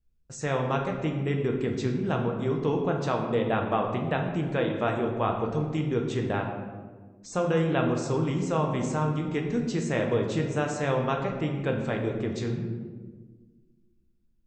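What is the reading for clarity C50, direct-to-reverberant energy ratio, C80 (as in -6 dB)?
5.0 dB, 1.0 dB, 6.5 dB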